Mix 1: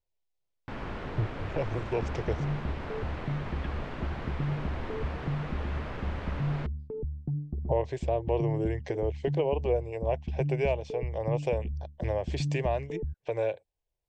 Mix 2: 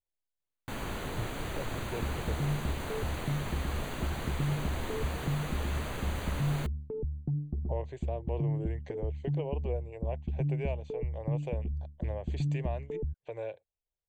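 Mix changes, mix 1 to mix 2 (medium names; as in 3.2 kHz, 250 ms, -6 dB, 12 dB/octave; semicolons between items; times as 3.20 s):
speech -9.0 dB; first sound: remove low-pass 2.5 kHz 12 dB/octave; master: add Butterworth band-stop 5.3 kHz, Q 4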